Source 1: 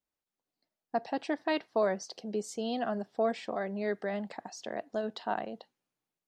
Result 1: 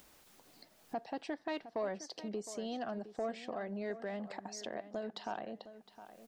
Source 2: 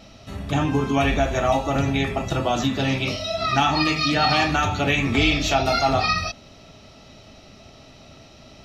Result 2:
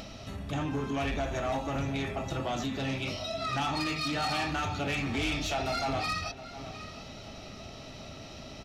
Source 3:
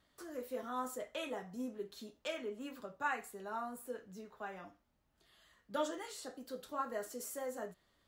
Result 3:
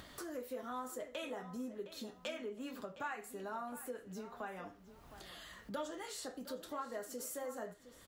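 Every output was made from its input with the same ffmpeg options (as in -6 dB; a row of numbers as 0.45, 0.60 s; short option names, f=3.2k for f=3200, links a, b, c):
-filter_complex "[0:a]acompressor=mode=upward:threshold=-26dB:ratio=2.5,asoftclip=type=tanh:threshold=-18dB,asplit=2[a][b];[b]adelay=712,lowpass=f=4k:p=1,volume=-13.5dB,asplit=2[c][d];[d]adelay=712,lowpass=f=4k:p=1,volume=0.27,asplit=2[e][f];[f]adelay=712,lowpass=f=4k:p=1,volume=0.27[g];[c][e][g]amix=inputs=3:normalize=0[h];[a][h]amix=inputs=2:normalize=0,volume=-8dB"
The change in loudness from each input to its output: -7.0, -11.0, -2.0 LU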